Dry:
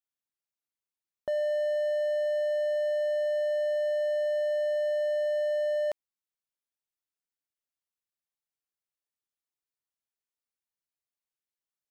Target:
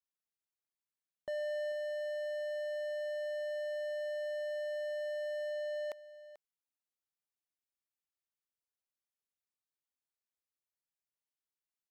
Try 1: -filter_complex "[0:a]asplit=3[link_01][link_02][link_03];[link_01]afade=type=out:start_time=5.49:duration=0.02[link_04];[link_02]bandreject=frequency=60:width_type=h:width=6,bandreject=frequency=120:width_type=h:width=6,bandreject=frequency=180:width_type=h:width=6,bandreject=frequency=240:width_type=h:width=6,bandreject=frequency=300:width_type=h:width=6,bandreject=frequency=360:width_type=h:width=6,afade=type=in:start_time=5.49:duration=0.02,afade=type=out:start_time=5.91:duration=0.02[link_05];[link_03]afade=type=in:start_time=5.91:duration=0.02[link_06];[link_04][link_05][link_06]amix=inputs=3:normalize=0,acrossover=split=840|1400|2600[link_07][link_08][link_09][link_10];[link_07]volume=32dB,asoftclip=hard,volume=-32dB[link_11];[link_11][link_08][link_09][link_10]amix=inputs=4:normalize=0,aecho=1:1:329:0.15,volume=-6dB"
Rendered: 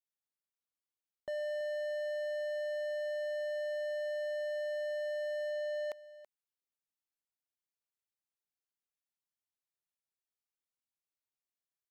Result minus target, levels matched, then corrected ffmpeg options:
echo 110 ms early
-filter_complex "[0:a]asplit=3[link_01][link_02][link_03];[link_01]afade=type=out:start_time=5.49:duration=0.02[link_04];[link_02]bandreject=frequency=60:width_type=h:width=6,bandreject=frequency=120:width_type=h:width=6,bandreject=frequency=180:width_type=h:width=6,bandreject=frequency=240:width_type=h:width=6,bandreject=frequency=300:width_type=h:width=6,bandreject=frequency=360:width_type=h:width=6,afade=type=in:start_time=5.49:duration=0.02,afade=type=out:start_time=5.91:duration=0.02[link_05];[link_03]afade=type=in:start_time=5.91:duration=0.02[link_06];[link_04][link_05][link_06]amix=inputs=3:normalize=0,acrossover=split=840|1400|2600[link_07][link_08][link_09][link_10];[link_07]volume=32dB,asoftclip=hard,volume=-32dB[link_11];[link_11][link_08][link_09][link_10]amix=inputs=4:normalize=0,aecho=1:1:439:0.15,volume=-6dB"

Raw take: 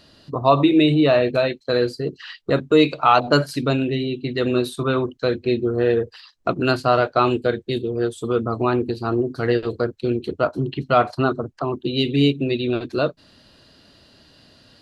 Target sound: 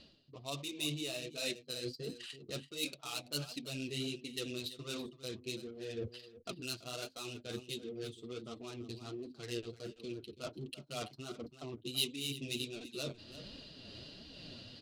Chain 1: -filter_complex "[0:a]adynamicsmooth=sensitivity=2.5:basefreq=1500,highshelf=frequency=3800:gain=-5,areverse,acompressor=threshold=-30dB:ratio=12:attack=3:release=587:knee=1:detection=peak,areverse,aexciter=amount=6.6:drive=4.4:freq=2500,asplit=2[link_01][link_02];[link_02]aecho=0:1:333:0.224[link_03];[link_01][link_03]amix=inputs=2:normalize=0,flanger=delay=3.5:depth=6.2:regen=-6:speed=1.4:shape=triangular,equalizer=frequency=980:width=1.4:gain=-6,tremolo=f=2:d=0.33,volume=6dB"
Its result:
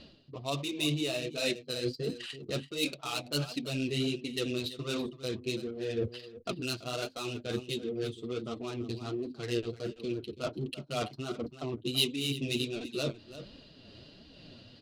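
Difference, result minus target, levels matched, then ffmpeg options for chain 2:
downward compressor: peak gain reduction −9 dB; 8,000 Hz band −5.0 dB
-filter_complex "[0:a]adynamicsmooth=sensitivity=2.5:basefreq=1500,highshelf=frequency=3800:gain=3.5,areverse,acompressor=threshold=-39.5dB:ratio=12:attack=3:release=587:knee=1:detection=peak,areverse,aexciter=amount=6.6:drive=4.4:freq=2500,asplit=2[link_01][link_02];[link_02]aecho=0:1:333:0.224[link_03];[link_01][link_03]amix=inputs=2:normalize=0,flanger=delay=3.5:depth=6.2:regen=-6:speed=1.4:shape=triangular,equalizer=frequency=980:width=1.4:gain=-6,tremolo=f=2:d=0.33,volume=6dB"

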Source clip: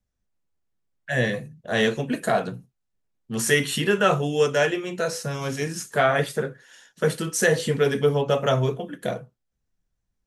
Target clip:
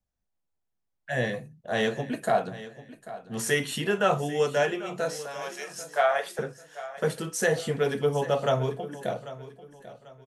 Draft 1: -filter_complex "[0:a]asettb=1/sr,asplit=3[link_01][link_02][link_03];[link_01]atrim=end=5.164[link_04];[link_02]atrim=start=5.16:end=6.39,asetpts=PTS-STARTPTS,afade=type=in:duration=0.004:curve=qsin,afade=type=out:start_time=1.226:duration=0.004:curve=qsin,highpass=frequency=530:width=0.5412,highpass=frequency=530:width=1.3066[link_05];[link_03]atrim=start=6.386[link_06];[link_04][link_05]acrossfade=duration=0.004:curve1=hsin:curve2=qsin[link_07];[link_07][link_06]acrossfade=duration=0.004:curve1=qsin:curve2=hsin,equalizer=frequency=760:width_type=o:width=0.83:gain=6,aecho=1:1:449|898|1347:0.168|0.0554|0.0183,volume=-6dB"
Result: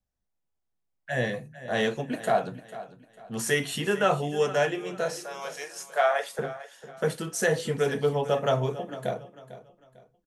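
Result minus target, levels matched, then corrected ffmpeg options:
echo 343 ms early
-filter_complex "[0:a]asettb=1/sr,asplit=3[link_01][link_02][link_03];[link_01]atrim=end=5.164[link_04];[link_02]atrim=start=5.16:end=6.39,asetpts=PTS-STARTPTS,afade=type=in:duration=0.004:curve=qsin,afade=type=out:start_time=1.226:duration=0.004:curve=qsin,highpass=frequency=530:width=0.5412,highpass=frequency=530:width=1.3066[link_05];[link_03]atrim=start=6.386[link_06];[link_04][link_05]acrossfade=duration=0.004:curve1=hsin:curve2=qsin[link_07];[link_07][link_06]acrossfade=duration=0.004:curve1=qsin:curve2=hsin,equalizer=frequency=760:width_type=o:width=0.83:gain=6,aecho=1:1:792|1584|2376:0.168|0.0554|0.0183,volume=-6dB"

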